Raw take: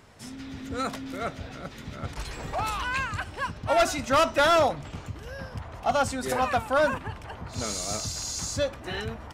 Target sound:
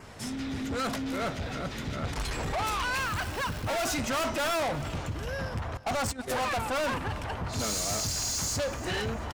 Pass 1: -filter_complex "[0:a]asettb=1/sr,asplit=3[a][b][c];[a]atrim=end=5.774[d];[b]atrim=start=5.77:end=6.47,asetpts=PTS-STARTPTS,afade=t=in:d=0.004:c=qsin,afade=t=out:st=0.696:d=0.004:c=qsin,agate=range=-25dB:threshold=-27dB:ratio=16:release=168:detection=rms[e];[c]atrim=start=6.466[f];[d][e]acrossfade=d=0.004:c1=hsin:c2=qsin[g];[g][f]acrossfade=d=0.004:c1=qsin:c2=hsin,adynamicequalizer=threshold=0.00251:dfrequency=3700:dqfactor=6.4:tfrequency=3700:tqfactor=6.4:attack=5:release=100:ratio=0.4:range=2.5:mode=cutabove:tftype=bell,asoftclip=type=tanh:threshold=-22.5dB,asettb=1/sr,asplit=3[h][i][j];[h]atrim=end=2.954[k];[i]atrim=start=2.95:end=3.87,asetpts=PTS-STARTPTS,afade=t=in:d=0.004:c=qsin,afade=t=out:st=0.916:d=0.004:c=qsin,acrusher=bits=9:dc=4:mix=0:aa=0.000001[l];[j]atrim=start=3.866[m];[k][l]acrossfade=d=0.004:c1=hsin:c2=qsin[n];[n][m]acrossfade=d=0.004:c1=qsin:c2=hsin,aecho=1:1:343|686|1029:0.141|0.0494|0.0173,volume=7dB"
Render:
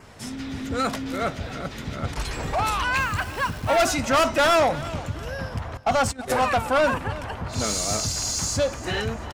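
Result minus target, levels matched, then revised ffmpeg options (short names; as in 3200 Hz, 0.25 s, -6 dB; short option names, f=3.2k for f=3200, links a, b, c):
soft clip: distortion -9 dB
-filter_complex "[0:a]asettb=1/sr,asplit=3[a][b][c];[a]atrim=end=5.774[d];[b]atrim=start=5.77:end=6.47,asetpts=PTS-STARTPTS,afade=t=in:d=0.004:c=qsin,afade=t=out:st=0.696:d=0.004:c=qsin,agate=range=-25dB:threshold=-27dB:ratio=16:release=168:detection=rms[e];[c]atrim=start=6.466[f];[d][e]acrossfade=d=0.004:c1=hsin:c2=qsin[g];[g][f]acrossfade=d=0.004:c1=qsin:c2=hsin,adynamicequalizer=threshold=0.00251:dfrequency=3700:dqfactor=6.4:tfrequency=3700:tqfactor=6.4:attack=5:release=100:ratio=0.4:range=2.5:mode=cutabove:tftype=bell,asoftclip=type=tanh:threshold=-34.5dB,asettb=1/sr,asplit=3[h][i][j];[h]atrim=end=2.954[k];[i]atrim=start=2.95:end=3.87,asetpts=PTS-STARTPTS,afade=t=in:d=0.004:c=qsin,afade=t=out:st=0.916:d=0.004:c=qsin,acrusher=bits=9:dc=4:mix=0:aa=0.000001[l];[j]atrim=start=3.866[m];[k][l]acrossfade=d=0.004:c1=hsin:c2=qsin[n];[n][m]acrossfade=d=0.004:c1=qsin:c2=hsin,aecho=1:1:343|686|1029:0.141|0.0494|0.0173,volume=7dB"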